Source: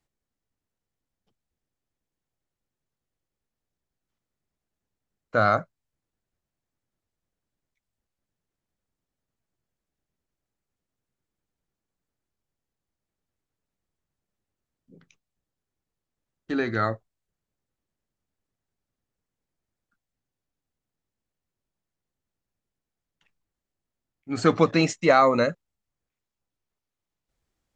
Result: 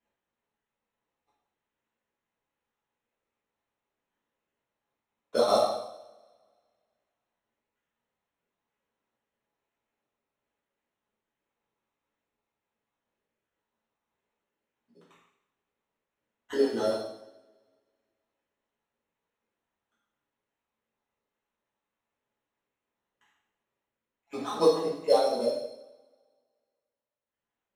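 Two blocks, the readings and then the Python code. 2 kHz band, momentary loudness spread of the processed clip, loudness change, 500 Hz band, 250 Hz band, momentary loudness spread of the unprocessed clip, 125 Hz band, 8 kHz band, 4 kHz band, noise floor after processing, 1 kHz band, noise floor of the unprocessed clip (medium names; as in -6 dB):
-17.0 dB, 16 LU, -4.5 dB, -1.0 dB, -8.5 dB, 11 LU, -18.5 dB, -4.0 dB, -1.0 dB, under -85 dBFS, -7.0 dB, under -85 dBFS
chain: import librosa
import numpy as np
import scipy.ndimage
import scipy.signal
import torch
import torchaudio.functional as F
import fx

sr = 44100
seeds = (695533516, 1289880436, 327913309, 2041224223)

y = fx.spec_dropout(x, sr, seeds[0], share_pct=39)
y = scipy.signal.sosfilt(scipy.signal.butter(2, 470.0, 'highpass', fs=sr, output='sos'), y)
y = fx.band_shelf(y, sr, hz=1700.0, db=-9.0, octaves=1.1)
y = fx.env_lowpass_down(y, sr, base_hz=870.0, full_db=-33.0)
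y = fx.rider(y, sr, range_db=10, speed_s=2.0)
y = fx.sample_hold(y, sr, seeds[1], rate_hz=4800.0, jitter_pct=0)
y = fx.air_absorb(y, sr, metres=58.0)
y = fx.rev_double_slope(y, sr, seeds[2], early_s=0.79, late_s=2.0, knee_db=-24, drr_db=-9.0)
y = y * 10.0 ** (-5.5 / 20.0)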